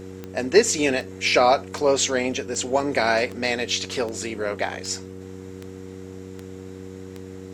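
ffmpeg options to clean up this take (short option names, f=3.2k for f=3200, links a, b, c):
-af "adeclick=t=4,bandreject=f=94.1:t=h:w=4,bandreject=f=188.2:t=h:w=4,bandreject=f=282.3:t=h:w=4,bandreject=f=376.4:t=h:w=4,bandreject=f=470.5:t=h:w=4"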